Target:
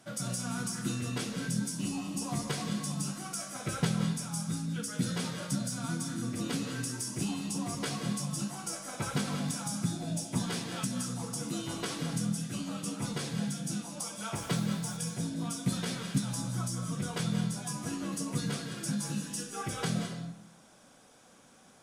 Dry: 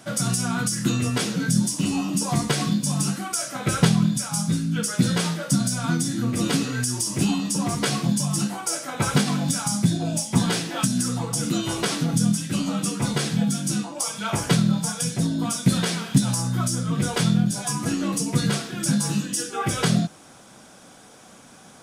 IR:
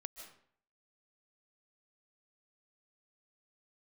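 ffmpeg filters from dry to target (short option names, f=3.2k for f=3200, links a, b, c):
-filter_complex "[0:a]asettb=1/sr,asplit=3[a][b][c];[a]atrim=end=14.364[d];[b]atrim=start=14.36:end=14.97,asetpts=PTS-STARTPTS,afade=t=in:d=0.004:c=qsin,afade=t=out:st=0.606:d=0.004:c=qsin,acrusher=bits=5:mix=0:aa=0.5[e];[c]atrim=start=14.966[f];[d][e]acrossfade=d=0.004:c1=hsin:c2=qsin[g];[g][f]acrossfade=d=0.004:c1=qsin:c2=hsin[h];[1:a]atrim=start_sample=2205,asetrate=37485,aresample=44100[i];[h][i]afir=irnorm=-1:irlink=0,volume=-7.5dB"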